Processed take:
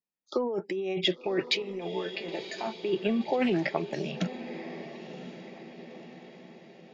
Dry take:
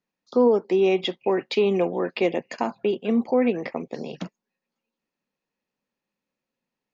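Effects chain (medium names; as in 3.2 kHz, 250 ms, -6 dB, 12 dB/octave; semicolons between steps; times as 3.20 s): spectral noise reduction 19 dB; compressor with a negative ratio -27 dBFS, ratio -1; 1.62–2.77 s: feedback comb 220 Hz, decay 0.16 s, harmonics all, mix 80%; echo that smears into a reverb 1045 ms, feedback 53%, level -12 dB; 3.41–4.21 s: loudspeaker Doppler distortion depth 0.15 ms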